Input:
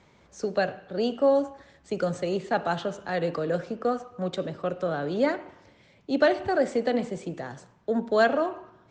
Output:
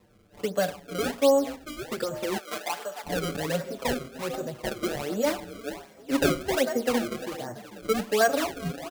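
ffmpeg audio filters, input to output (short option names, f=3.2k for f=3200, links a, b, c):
-filter_complex "[0:a]asettb=1/sr,asplit=3[a][b][c];[a]atrim=end=6.454[d];[b]atrim=start=6.45:end=8.21,asetpts=PTS-STARTPTS,afade=t=in:d=0.004:c=qsin,afade=t=out:st=1.756:d=0.004:c=qsin,lowpass=1.8k[e];[c]atrim=start=8.206[f];[d][e]acrossfade=d=0.004:c1=hsin:c2=qsin[g];[g][f]acrossfade=d=0.004:c1=qsin:c2=hsin,asplit=2[h][i];[i]asplit=4[j][k][l][m];[j]adelay=444,afreqshift=33,volume=-12dB[n];[k]adelay=888,afreqshift=66,volume=-19.5dB[o];[l]adelay=1332,afreqshift=99,volume=-27.1dB[p];[m]adelay=1776,afreqshift=132,volume=-34.6dB[q];[n][o][p][q]amix=inputs=4:normalize=0[r];[h][r]amix=inputs=2:normalize=0,acrusher=samples=28:mix=1:aa=0.000001:lfo=1:lforange=44.8:lforate=1.3,asettb=1/sr,asplit=3[s][t][u];[s]atrim=end=2.374[v];[t]atrim=start=2.37:end=3.04,asetpts=PTS-STARTPTS,afade=t=in:d=0.004:c=qsin,afade=t=out:st=0.666:d=0.004:c=qsin,highpass=640[w];[u]atrim=start=3.036[x];[v][w]acrossfade=d=0.004:c1=hsin:c2=qsin[y];[y][x]acrossfade=d=0.004:c1=qsin:c2=hsin,asplit=2[z][aa];[aa]adelay=6.2,afreqshift=-0.4[ab];[z][ab]amix=inputs=2:normalize=1,volume=1.5dB"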